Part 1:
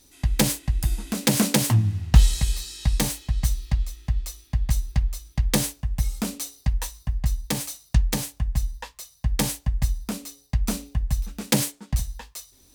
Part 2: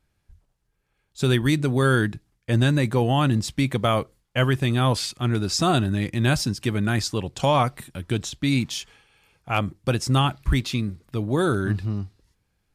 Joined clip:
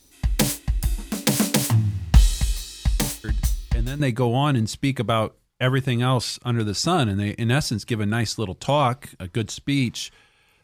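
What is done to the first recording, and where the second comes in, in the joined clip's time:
part 1
3.24 add part 2 from 1.99 s 0.76 s -10.5 dB
4 switch to part 2 from 2.75 s

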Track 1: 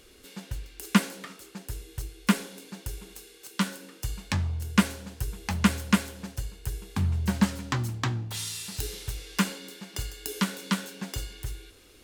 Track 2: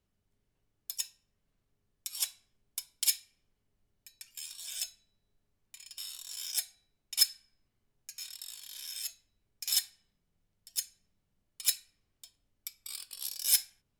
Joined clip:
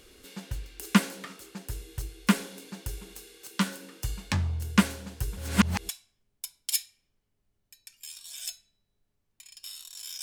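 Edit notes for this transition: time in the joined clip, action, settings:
track 1
5.37–5.89 reverse
5.89 switch to track 2 from 2.23 s

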